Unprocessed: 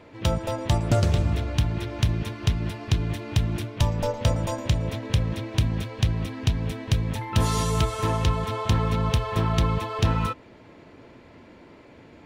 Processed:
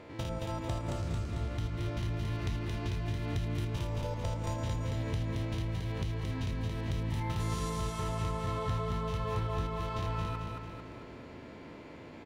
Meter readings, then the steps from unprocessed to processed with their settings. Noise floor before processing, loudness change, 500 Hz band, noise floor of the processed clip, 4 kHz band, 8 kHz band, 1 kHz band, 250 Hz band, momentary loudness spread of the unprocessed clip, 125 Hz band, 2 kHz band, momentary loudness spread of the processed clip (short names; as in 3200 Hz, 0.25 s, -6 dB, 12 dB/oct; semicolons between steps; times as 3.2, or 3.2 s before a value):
-50 dBFS, -9.5 dB, -9.0 dB, -48 dBFS, -12.0 dB, -12.0 dB, -8.5 dB, -9.5 dB, 4 LU, -9.5 dB, -9.0 dB, 11 LU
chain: stepped spectrum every 0.1 s; compressor, threshold -34 dBFS, peak gain reduction 14.5 dB; on a send: feedback echo 0.223 s, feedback 51%, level -3.5 dB